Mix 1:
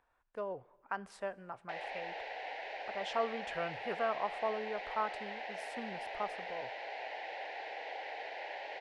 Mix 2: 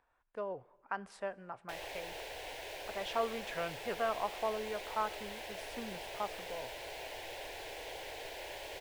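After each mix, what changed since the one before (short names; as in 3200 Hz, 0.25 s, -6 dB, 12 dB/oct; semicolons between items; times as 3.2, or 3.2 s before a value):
background: remove speaker cabinet 350–4100 Hz, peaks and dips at 370 Hz -5 dB, 790 Hz +9 dB, 1100 Hz -5 dB, 1900 Hz +7 dB, 3400 Hz -6 dB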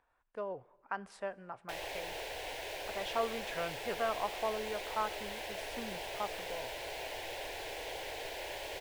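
background +3.0 dB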